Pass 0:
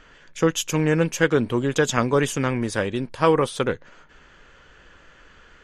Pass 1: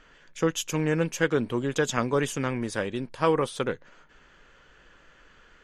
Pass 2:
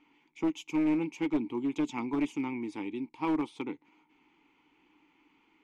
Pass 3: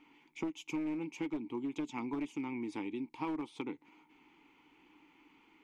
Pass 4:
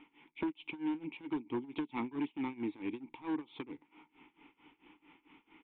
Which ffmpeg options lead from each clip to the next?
ffmpeg -i in.wav -af "equalizer=frequency=82:width=2.7:gain=-7.5,volume=-5dB" out.wav
ffmpeg -i in.wav -filter_complex "[0:a]asplit=3[link_01][link_02][link_03];[link_01]bandpass=frequency=300:width_type=q:width=8,volume=0dB[link_04];[link_02]bandpass=frequency=870:width_type=q:width=8,volume=-6dB[link_05];[link_03]bandpass=frequency=2240:width_type=q:width=8,volume=-9dB[link_06];[link_04][link_05][link_06]amix=inputs=3:normalize=0,highshelf=frequency=3900:gain=8,aeval=exprs='clip(val(0),-1,0.0282)':channel_layout=same,volume=5.5dB" out.wav
ffmpeg -i in.wav -af "acompressor=threshold=-39dB:ratio=4,volume=2.5dB" out.wav
ffmpeg -i in.wav -af "volume=35dB,asoftclip=hard,volume=-35dB,tremolo=f=4.5:d=0.91,aresample=8000,aresample=44100,volume=5dB" out.wav

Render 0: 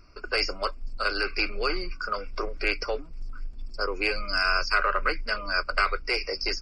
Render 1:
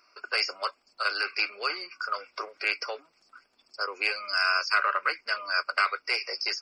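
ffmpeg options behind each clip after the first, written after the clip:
ffmpeg -i in.wav -af "highpass=730" out.wav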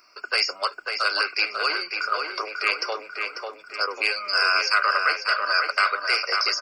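ffmpeg -i in.wav -filter_complex "[0:a]highshelf=frequency=7600:gain=8,asplit=2[link_01][link_02];[link_02]alimiter=limit=-18dB:level=0:latency=1:release=86,volume=-2dB[link_03];[link_01][link_03]amix=inputs=2:normalize=0,asplit=2[link_04][link_05];[link_05]adelay=544,lowpass=frequency=3100:poles=1,volume=-4dB,asplit=2[link_06][link_07];[link_07]adelay=544,lowpass=frequency=3100:poles=1,volume=0.5,asplit=2[link_08][link_09];[link_09]adelay=544,lowpass=frequency=3100:poles=1,volume=0.5,asplit=2[link_10][link_11];[link_11]adelay=544,lowpass=frequency=3100:poles=1,volume=0.5,asplit=2[link_12][link_13];[link_13]adelay=544,lowpass=frequency=3100:poles=1,volume=0.5,asplit=2[link_14][link_15];[link_15]adelay=544,lowpass=frequency=3100:poles=1,volume=0.5[link_16];[link_04][link_06][link_08][link_10][link_12][link_14][link_16]amix=inputs=7:normalize=0" out.wav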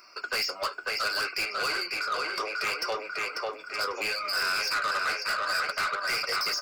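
ffmpeg -i in.wav -filter_complex "[0:a]asplit=2[link_01][link_02];[link_02]acompressor=threshold=-29dB:ratio=6,volume=2.5dB[link_03];[link_01][link_03]amix=inputs=2:normalize=0,asoftclip=type=tanh:threshold=-20.5dB,flanger=delay=5.1:depth=7.5:regen=-55:speed=0.67:shape=sinusoidal" out.wav

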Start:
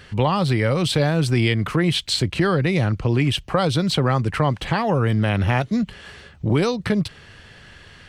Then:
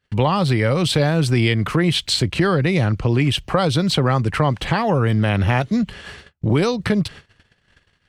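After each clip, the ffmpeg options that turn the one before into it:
ffmpeg -i in.wav -filter_complex "[0:a]asplit=2[link_01][link_02];[link_02]acompressor=threshold=-27dB:ratio=6,volume=-2.5dB[link_03];[link_01][link_03]amix=inputs=2:normalize=0,agate=range=-37dB:threshold=-36dB:ratio=16:detection=peak" out.wav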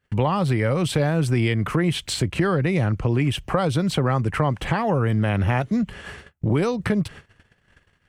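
ffmpeg -i in.wav -filter_complex "[0:a]equalizer=frequency=4200:width_type=o:width=0.96:gain=-8.5,asplit=2[link_01][link_02];[link_02]acompressor=threshold=-25dB:ratio=6,volume=0dB[link_03];[link_01][link_03]amix=inputs=2:normalize=0,volume=-5.5dB" out.wav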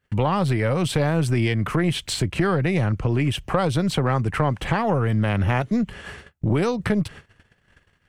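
ffmpeg -i in.wav -af "aeval=exprs='0.422*(cos(1*acos(clip(val(0)/0.422,-1,1)))-cos(1*PI/2))+0.0266*(cos(4*acos(clip(val(0)/0.422,-1,1)))-cos(4*PI/2))':channel_layout=same" out.wav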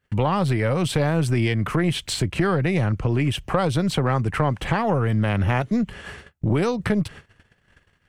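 ffmpeg -i in.wav -af anull out.wav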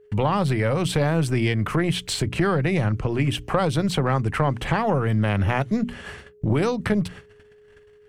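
ffmpeg -i in.wav -af "aeval=exprs='val(0)+0.00316*sin(2*PI*420*n/s)':channel_layout=same,bandreject=frequency=60:width_type=h:width=6,bandreject=frequency=120:width_type=h:width=6,bandreject=frequency=180:width_type=h:width=6,bandreject=frequency=240:width_type=h:width=6,bandreject=frequency=300:width_type=h:width=6" out.wav

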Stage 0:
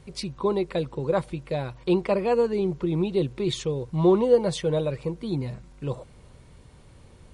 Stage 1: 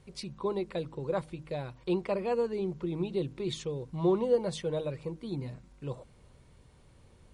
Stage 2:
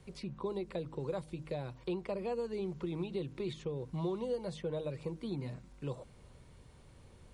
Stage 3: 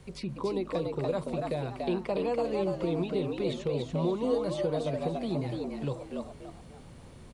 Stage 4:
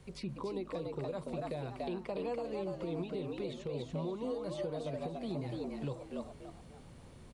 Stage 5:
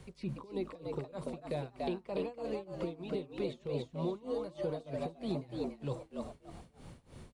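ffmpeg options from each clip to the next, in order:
ffmpeg -i in.wav -af "bandreject=frequency=52.14:width_type=h:width=4,bandreject=frequency=104.28:width_type=h:width=4,bandreject=frequency=156.42:width_type=h:width=4,bandreject=frequency=208.56:width_type=h:width=4,bandreject=frequency=260.7:width_type=h:width=4,bandreject=frequency=312.84:width_type=h:width=4,volume=-7.5dB" out.wav
ffmpeg -i in.wav -filter_complex "[0:a]acrossover=split=110|870|3000[link_01][link_02][link_03][link_04];[link_01]acompressor=threshold=-53dB:ratio=4[link_05];[link_02]acompressor=threshold=-37dB:ratio=4[link_06];[link_03]acompressor=threshold=-54dB:ratio=4[link_07];[link_04]acompressor=threshold=-59dB:ratio=4[link_08];[link_05][link_06][link_07][link_08]amix=inputs=4:normalize=0,volume=1dB" out.wav
ffmpeg -i in.wav -filter_complex "[0:a]asplit=5[link_01][link_02][link_03][link_04][link_05];[link_02]adelay=288,afreqshift=100,volume=-3.5dB[link_06];[link_03]adelay=576,afreqshift=200,volume=-13.4dB[link_07];[link_04]adelay=864,afreqshift=300,volume=-23.3dB[link_08];[link_05]adelay=1152,afreqshift=400,volume=-33.2dB[link_09];[link_01][link_06][link_07][link_08][link_09]amix=inputs=5:normalize=0,volume=6dB" out.wav
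ffmpeg -i in.wav -af "alimiter=level_in=0.5dB:limit=-24dB:level=0:latency=1:release=294,volume=-0.5dB,volume=-4.5dB" out.wav
ffmpeg -i in.wav -af "tremolo=f=3.2:d=0.92,volume=4dB" out.wav

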